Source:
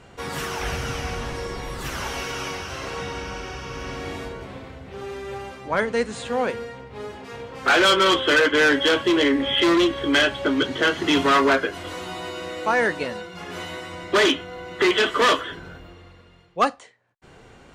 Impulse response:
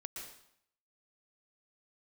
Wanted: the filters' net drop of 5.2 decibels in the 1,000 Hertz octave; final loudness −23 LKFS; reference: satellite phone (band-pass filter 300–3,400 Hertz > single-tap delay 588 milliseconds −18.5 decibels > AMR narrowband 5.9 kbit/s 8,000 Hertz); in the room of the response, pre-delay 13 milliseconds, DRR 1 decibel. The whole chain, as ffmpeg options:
-filter_complex "[0:a]equalizer=frequency=1000:width_type=o:gain=-7,asplit=2[link_01][link_02];[1:a]atrim=start_sample=2205,adelay=13[link_03];[link_02][link_03]afir=irnorm=-1:irlink=0,volume=1.5dB[link_04];[link_01][link_04]amix=inputs=2:normalize=0,highpass=300,lowpass=3400,aecho=1:1:588:0.119,volume=2.5dB" -ar 8000 -c:a libopencore_amrnb -b:a 5900

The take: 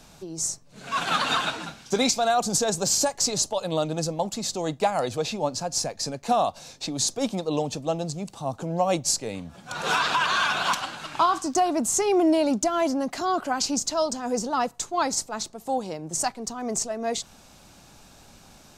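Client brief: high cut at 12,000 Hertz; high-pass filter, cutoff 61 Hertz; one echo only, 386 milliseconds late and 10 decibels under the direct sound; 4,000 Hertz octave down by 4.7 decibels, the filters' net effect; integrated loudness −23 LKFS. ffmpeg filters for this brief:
ffmpeg -i in.wav -af "highpass=61,lowpass=12000,equalizer=frequency=4000:width_type=o:gain=-6,aecho=1:1:386:0.316,volume=3dB" out.wav

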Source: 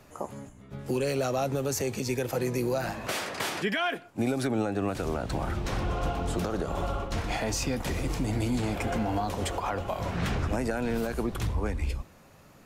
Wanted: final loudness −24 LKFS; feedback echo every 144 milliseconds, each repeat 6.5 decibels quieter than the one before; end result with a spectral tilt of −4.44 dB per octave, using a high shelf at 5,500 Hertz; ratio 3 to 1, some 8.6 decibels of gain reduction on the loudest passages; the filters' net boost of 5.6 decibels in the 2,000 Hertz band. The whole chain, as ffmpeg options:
ffmpeg -i in.wav -af "equalizer=frequency=2000:width_type=o:gain=6.5,highshelf=frequency=5500:gain=5.5,acompressor=threshold=-35dB:ratio=3,aecho=1:1:144|288|432|576|720|864:0.473|0.222|0.105|0.0491|0.0231|0.0109,volume=11.5dB" out.wav

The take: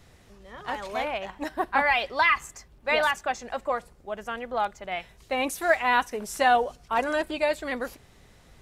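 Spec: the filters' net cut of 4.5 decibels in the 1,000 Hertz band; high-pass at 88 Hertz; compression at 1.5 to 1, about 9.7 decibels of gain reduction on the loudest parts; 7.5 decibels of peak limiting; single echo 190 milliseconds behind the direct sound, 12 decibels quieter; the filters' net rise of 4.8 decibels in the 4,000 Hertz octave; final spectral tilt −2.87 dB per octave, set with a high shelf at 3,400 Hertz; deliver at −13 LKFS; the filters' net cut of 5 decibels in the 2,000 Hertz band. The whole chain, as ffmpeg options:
ffmpeg -i in.wav -af "highpass=88,equalizer=frequency=1000:width_type=o:gain=-5.5,equalizer=frequency=2000:width_type=o:gain=-8,highshelf=frequency=3400:gain=8.5,equalizer=frequency=4000:width_type=o:gain=4.5,acompressor=threshold=-47dB:ratio=1.5,alimiter=level_in=4.5dB:limit=-24dB:level=0:latency=1,volume=-4.5dB,aecho=1:1:190:0.251,volume=26.5dB" out.wav

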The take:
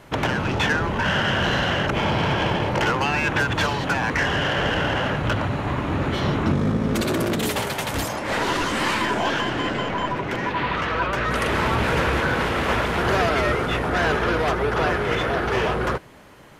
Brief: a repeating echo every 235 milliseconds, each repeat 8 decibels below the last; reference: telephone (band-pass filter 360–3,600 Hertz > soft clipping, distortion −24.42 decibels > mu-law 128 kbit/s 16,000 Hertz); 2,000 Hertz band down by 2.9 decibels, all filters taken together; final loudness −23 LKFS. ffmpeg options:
ffmpeg -i in.wav -af "highpass=360,lowpass=3600,equalizer=frequency=2000:width_type=o:gain=-3.5,aecho=1:1:235|470|705|940|1175:0.398|0.159|0.0637|0.0255|0.0102,asoftclip=threshold=-13.5dB,volume=2dB" -ar 16000 -c:a pcm_mulaw out.wav

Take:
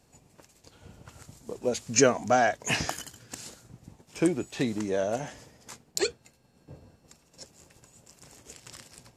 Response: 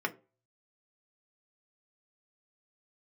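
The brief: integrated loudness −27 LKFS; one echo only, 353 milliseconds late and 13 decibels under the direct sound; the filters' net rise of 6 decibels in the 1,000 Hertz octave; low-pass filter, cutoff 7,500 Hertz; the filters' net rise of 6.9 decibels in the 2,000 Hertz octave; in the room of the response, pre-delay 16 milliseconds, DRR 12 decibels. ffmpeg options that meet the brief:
-filter_complex "[0:a]lowpass=7500,equalizer=frequency=1000:width_type=o:gain=8.5,equalizer=frequency=2000:width_type=o:gain=6,aecho=1:1:353:0.224,asplit=2[link_01][link_02];[1:a]atrim=start_sample=2205,adelay=16[link_03];[link_02][link_03]afir=irnorm=-1:irlink=0,volume=-18.5dB[link_04];[link_01][link_04]amix=inputs=2:normalize=0,volume=-3dB"

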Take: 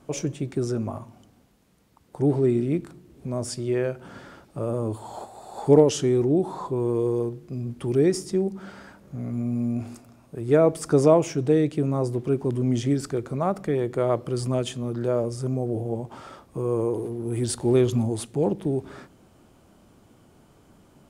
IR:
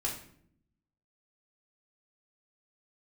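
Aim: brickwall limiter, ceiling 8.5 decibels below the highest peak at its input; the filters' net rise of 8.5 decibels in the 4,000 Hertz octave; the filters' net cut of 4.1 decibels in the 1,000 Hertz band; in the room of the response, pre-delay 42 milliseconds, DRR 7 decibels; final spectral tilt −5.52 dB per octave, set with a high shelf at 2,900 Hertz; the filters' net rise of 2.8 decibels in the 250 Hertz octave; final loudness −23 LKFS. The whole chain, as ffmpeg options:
-filter_complex "[0:a]equalizer=frequency=250:width_type=o:gain=4,equalizer=frequency=1000:width_type=o:gain=-7,highshelf=frequency=2900:gain=5,equalizer=frequency=4000:width_type=o:gain=7.5,alimiter=limit=-12dB:level=0:latency=1,asplit=2[link_01][link_02];[1:a]atrim=start_sample=2205,adelay=42[link_03];[link_02][link_03]afir=irnorm=-1:irlink=0,volume=-11dB[link_04];[link_01][link_04]amix=inputs=2:normalize=0"

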